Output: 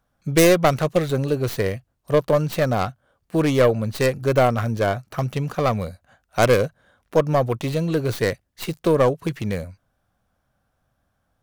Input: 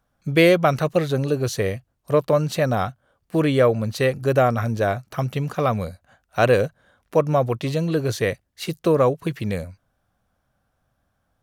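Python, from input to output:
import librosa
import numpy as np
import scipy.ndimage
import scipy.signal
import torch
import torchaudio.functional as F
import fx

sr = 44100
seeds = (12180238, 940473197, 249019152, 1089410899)

y = fx.tracing_dist(x, sr, depth_ms=0.34)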